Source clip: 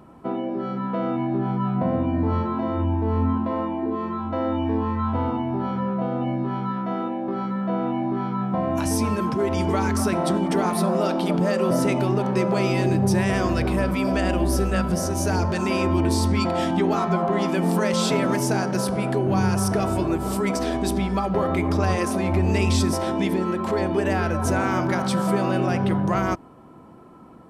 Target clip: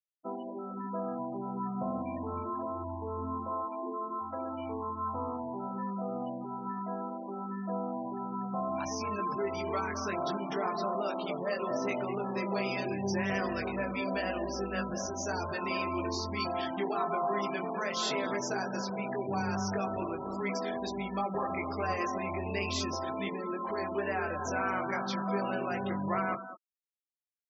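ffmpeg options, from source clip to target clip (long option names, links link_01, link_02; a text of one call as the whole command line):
ffmpeg -i in.wav -filter_complex "[0:a]highpass=frequency=120:poles=1,aresample=16000,acrusher=bits=6:mode=log:mix=0:aa=0.000001,aresample=44100,lowshelf=frequency=410:gain=-10.5,asplit=2[link_01][link_02];[link_02]adelay=20,volume=-4dB[link_03];[link_01][link_03]amix=inputs=2:normalize=0,asplit=2[link_04][link_05];[link_05]adelay=204.1,volume=-11dB,highshelf=frequency=4000:gain=-4.59[link_06];[link_04][link_06]amix=inputs=2:normalize=0,afftfilt=real='re*gte(hypot(re,im),0.0355)':imag='im*gte(hypot(re,im),0.0355)':win_size=1024:overlap=0.75,volume=-7dB" out.wav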